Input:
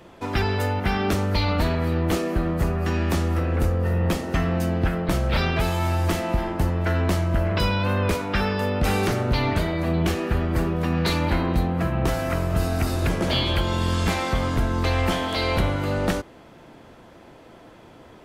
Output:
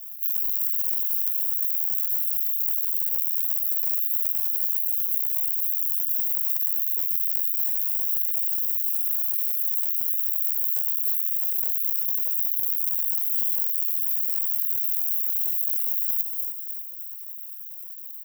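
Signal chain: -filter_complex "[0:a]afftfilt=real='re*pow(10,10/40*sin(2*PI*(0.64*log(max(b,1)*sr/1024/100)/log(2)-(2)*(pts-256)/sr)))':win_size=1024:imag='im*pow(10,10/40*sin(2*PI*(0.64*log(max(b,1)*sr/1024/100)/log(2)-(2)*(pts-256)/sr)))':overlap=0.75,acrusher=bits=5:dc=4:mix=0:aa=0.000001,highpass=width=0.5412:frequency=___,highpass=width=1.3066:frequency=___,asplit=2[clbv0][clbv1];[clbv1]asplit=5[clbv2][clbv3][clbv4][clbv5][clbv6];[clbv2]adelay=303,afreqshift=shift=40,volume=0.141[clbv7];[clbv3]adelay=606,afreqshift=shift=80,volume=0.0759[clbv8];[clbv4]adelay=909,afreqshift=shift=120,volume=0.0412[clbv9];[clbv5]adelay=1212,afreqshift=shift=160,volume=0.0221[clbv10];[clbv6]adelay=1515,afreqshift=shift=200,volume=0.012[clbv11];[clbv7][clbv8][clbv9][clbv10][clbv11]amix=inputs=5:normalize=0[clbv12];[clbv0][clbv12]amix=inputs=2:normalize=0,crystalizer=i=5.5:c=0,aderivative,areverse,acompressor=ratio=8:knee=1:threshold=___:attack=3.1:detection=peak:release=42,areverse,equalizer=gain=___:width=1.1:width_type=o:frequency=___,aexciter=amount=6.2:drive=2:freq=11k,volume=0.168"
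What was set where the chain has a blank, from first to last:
1.2k, 1.2k, 0.1, -13, 5.1k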